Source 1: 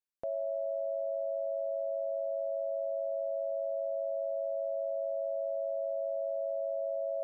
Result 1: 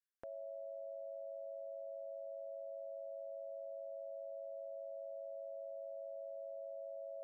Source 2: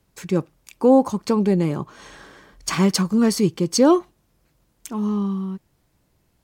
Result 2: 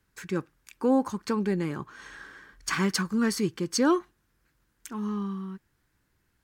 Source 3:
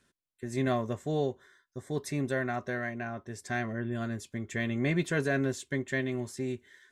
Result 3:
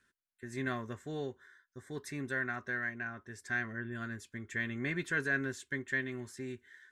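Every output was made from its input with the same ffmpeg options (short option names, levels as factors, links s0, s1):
-af "equalizer=f=160:t=o:w=0.67:g=-4,equalizer=f=630:t=o:w=0.67:g=-8,equalizer=f=1600:t=o:w=0.67:g=10,volume=0.473"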